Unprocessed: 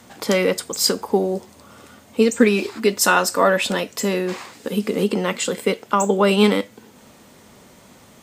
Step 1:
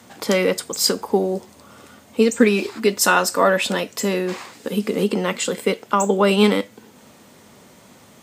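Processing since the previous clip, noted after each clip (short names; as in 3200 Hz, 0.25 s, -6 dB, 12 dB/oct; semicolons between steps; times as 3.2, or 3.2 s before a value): HPF 75 Hz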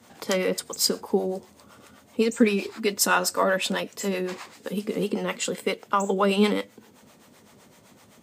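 harmonic tremolo 7.8 Hz, depth 70%, crossover 500 Hz; gain -2.5 dB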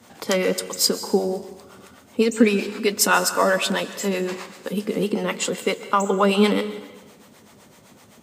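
plate-style reverb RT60 1.1 s, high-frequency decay 1×, pre-delay 0.115 s, DRR 12.5 dB; gain +3.5 dB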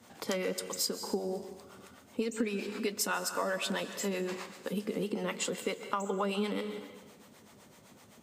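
compressor 4:1, threshold -23 dBFS, peak gain reduction 11.5 dB; gain -7 dB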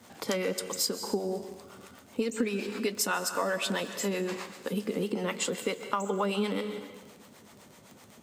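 crackle 29/s -43 dBFS; gain +3 dB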